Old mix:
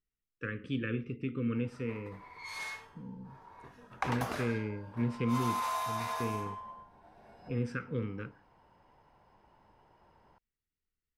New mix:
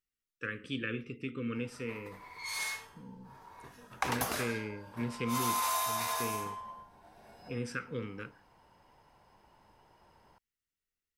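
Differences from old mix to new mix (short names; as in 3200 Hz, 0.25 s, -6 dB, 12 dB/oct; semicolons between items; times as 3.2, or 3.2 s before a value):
speech: add low shelf 230 Hz -8 dB; master: remove LPF 2100 Hz 6 dB/oct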